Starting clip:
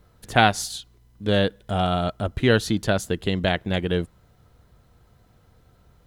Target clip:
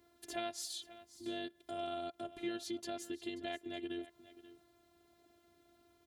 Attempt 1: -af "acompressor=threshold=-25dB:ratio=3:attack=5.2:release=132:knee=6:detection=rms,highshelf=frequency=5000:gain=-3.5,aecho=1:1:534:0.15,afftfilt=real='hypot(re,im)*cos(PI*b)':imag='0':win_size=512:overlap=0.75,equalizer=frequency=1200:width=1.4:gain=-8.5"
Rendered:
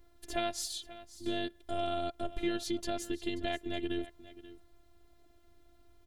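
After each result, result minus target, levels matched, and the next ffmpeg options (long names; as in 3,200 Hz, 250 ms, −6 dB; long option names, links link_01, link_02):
125 Hz band +6.5 dB; downward compressor: peak gain reduction −6.5 dB
-af "acompressor=threshold=-25dB:ratio=3:attack=5.2:release=132:knee=6:detection=rms,highshelf=frequency=5000:gain=-3.5,aecho=1:1:534:0.15,afftfilt=real='hypot(re,im)*cos(PI*b)':imag='0':win_size=512:overlap=0.75,highpass=140,equalizer=frequency=1200:width=1.4:gain=-8.5"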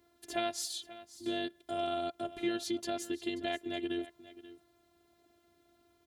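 downward compressor: peak gain reduction −6.5 dB
-af "acompressor=threshold=-34.5dB:ratio=3:attack=5.2:release=132:knee=6:detection=rms,highshelf=frequency=5000:gain=-3.5,aecho=1:1:534:0.15,afftfilt=real='hypot(re,im)*cos(PI*b)':imag='0':win_size=512:overlap=0.75,highpass=140,equalizer=frequency=1200:width=1.4:gain=-8.5"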